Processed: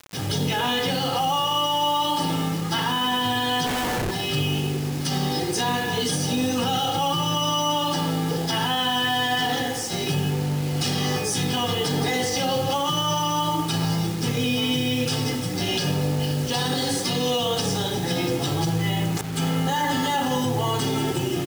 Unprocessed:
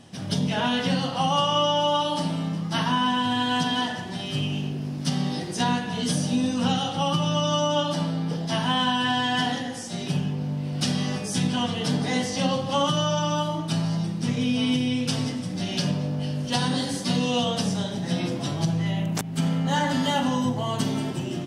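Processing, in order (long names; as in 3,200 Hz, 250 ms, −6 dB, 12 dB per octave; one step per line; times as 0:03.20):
comb filter 2.4 ms, depth 67%
in parallel at −2 dB: compressor whose output falls as the input rises −26 dBFS
on the sum: brickwall limiter −15 dBFS, peak gain reduction 10 dB
bit-depth reduction 6 bits, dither none
0:03.66–0:04.11: comparator with hysteresis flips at −25 dBFS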